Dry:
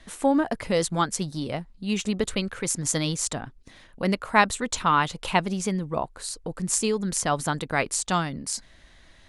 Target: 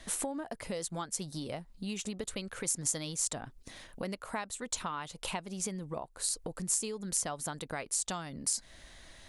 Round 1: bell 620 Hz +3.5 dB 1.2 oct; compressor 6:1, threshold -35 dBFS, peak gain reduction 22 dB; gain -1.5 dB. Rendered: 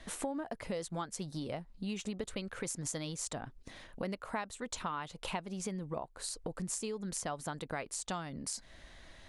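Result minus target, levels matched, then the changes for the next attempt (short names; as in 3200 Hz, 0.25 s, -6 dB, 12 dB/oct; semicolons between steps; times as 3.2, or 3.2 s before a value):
8000 Hz band -4.0 dB
add after compressor: high shelf 5700 Hz +12 dB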